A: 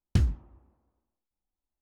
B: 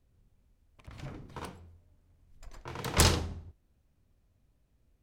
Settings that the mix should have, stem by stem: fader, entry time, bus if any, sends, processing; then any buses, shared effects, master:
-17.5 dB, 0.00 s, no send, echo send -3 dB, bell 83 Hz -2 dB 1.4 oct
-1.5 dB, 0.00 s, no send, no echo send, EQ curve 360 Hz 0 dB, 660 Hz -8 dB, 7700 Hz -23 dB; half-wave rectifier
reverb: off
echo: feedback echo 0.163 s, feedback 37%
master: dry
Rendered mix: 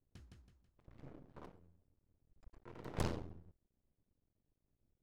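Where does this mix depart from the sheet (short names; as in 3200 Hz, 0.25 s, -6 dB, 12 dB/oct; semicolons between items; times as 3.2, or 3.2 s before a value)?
stem A -17.5 dB -> -27.5 dB; master: extra low shelf 260 Hz -8.5 dB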